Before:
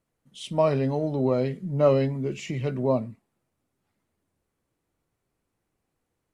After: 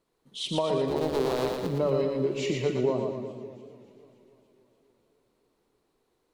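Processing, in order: 0.88–1.67 cycle switcher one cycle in 2, muted; fifteen-band EQ 100 Hz -8 dB, 400 Hz +10 dB, 1000 Hz +6 dB, 4000 Hz +9 dB; compressor, threshold -25 dBFS, peak gain reduction 14.5 dB; split-band echo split 460 Hz, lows 0.195 s, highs 0.117 s, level -4 dB; warbling echo 0.288 s, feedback 64%, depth 125 cents, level -22 dB

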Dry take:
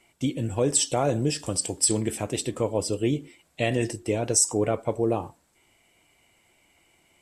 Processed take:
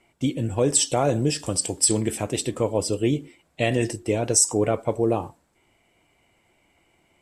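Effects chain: mismatched tape noise reduction decoder only; gain +2.5 dB

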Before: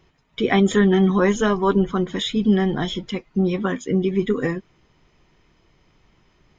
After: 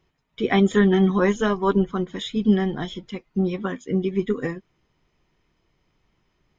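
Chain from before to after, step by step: upward expander 1.5:1, over -31 dBFS

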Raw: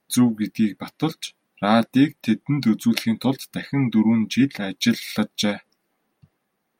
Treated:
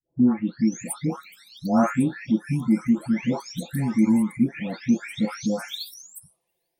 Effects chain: spectral delay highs late, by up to 0.771 s; envelope phaser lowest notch 210 Hz, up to 3900 Hz, full sweep at -24 dBFS

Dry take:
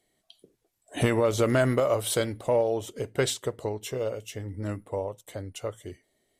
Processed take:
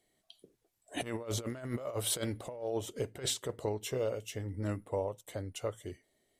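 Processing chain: negative-ratio compressor -28 dBFS, ratio -0.5; gain -6 dB

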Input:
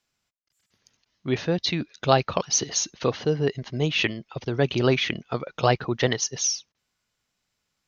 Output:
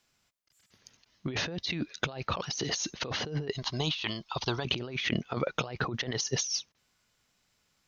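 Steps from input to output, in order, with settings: 3.53–4.65 graphic EQ 125/250/500/1000/2000/4000 Hz -8/-8/-10/+9/-9/+9 dB; negative-ratio compressor -32 dBFS, ratio -1; gain -1.5 dB

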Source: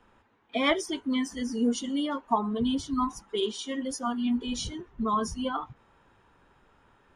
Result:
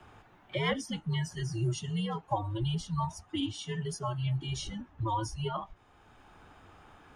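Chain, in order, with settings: frequency shift -110 Hz; three-band squash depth 40%; gain -4 dB

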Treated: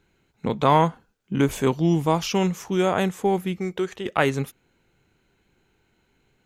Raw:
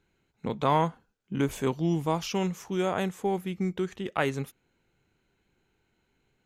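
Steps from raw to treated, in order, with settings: 3.58–4.06 resonant low shelf 340 Hz -6.5 dB, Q 1.5; gain +6.5 dB

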